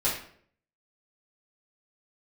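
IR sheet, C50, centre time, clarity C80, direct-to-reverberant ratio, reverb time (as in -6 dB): 4.5 dB, 37 ms, 9.0 dB, -8.5 dB, 0.60 s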